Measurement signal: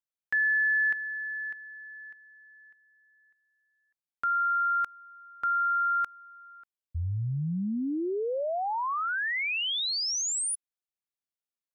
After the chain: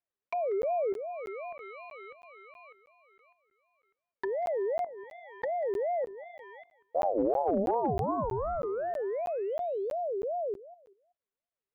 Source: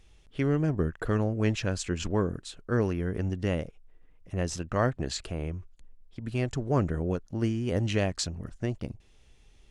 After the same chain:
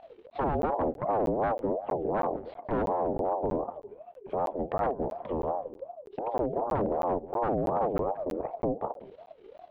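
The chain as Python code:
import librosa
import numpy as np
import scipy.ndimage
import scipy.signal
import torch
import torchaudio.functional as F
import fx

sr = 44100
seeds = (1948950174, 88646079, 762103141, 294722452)

p1 = np.where(x < 0.0, 10.0 ** (-7.0 / 20.0) * x, x)
p2 = fx.env_lowpass_down(p1, sr, base_hz=340.0, full_db=-30.5)
p3 = fx.hum_notches(p2, sr, base_hz=50, count=8)
p4 = fx.dynamic_eq(p3, sr, hz=1500.0, q=0.91, threshold_db=-56.0, ratio=6.0, max_db=-4)
p5 = fx.level_steps(p4, sr, step_db=15)
p6 = p4 + (p5 * librosa.db_to_amplitude(-2.5))
p7 = 10.0 ** (-26.5 / 20.0) * (np.abs((p6 / 10.0 ** (-26.5 / 20.0) + 3.0) % 4.0 - 2.0) - 1.0)
p8 = fx.air_absorb(p7, sr, metres=450.0)
p9 = p8 + fx.echo_feedback(p8, sr, ms=190, feedback_pct=31, wet_db=-18.0, dry=0)
p10 = fx.buffer_crackle(p9, sr, first_s=0.3, period_s=0.32, block=512, kind='zero')
p11 = fx.ring_lfo(p10, sr, carrier_hz=550.0, swing_pct=30, hz=2.7)
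y = p11 * librosa.db_to_amplitude(7.5)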